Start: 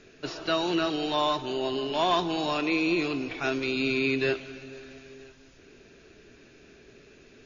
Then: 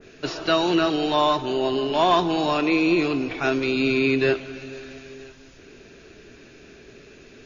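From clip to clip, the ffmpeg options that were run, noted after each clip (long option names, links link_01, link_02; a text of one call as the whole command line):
ffmpeg -i in.wav -af "adynamicequalizer=threshold=0.00708:dfrequency=1900:dqfactor=0.7:tfrequency=1900:tqfactor=0.7:attack=5:release=100:ratio=0.375:range=2:mode=cutabove:tftype=highshelf,volume=6.5dB" out.wav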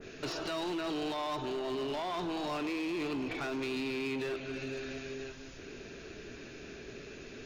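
ffmpeg -i in.wav -af "alimiter=limit=-17.5dB:level=0:latency=1:release=17,acompressor=threshold=-37dB:ratio=2,asoftclip=type=hard:threshold=-32dB" out.wav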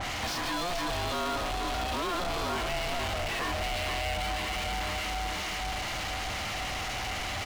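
ffmpeg -i in.wav -filter_complex "[0:a]aecho=1:1:471|942|1413|1884|2355|2826|3297:0.398|0.227|0.129|0.0737|0.042|0.024|0.0137,asplit=2[link_01][link_02];[link_02]highpass=frequency=720:poles=1,volume=35dB,asoftclip=type=tanh:threshold=-28dB[link_03];[link_01][link_03]amix=inputs=2:normalize=0,lowpass=frequency=5600:poles=1,volume=-6dB,aeval=exprs='val(0)*sin(2*PI*350*n/s)':channel_layout=same,volume=4dB" out.wav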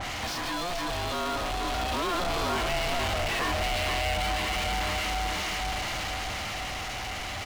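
ffmpeg -i in.wav -af "dynaudnorm=framelen=270:gausssize=13:maxgain=3.5dB" out.wav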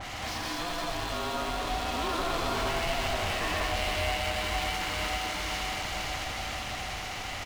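ffmpeg -i in.wav -af "aecho=1:1:125.4|209.9:0.708|0.794,volume=-5dB" out.wav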